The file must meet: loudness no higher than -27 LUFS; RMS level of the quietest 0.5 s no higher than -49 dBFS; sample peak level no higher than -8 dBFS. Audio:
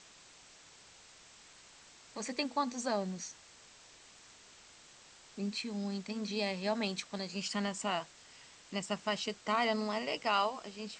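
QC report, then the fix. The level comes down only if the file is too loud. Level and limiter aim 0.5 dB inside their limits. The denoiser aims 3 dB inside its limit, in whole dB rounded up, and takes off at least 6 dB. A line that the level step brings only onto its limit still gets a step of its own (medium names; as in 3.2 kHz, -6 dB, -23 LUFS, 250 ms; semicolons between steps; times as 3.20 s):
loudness -36.0 LUFS: pass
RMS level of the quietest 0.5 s -58 dBFS: pass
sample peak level -17.5 dBFS: pass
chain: none needed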